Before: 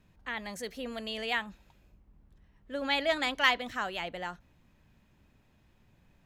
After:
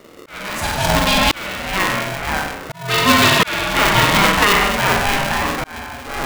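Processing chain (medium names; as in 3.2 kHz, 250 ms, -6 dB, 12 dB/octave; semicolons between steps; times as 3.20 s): ever faster or slower copies 93 ms, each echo -4 st, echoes 3, each echo -6 dB; flutter echo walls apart 8.1 m, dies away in 0.89 s; slow attack 699 ms; loudness maximiser +20 dB; polarity switched at an audio rate 400 Hz; trim -1 dB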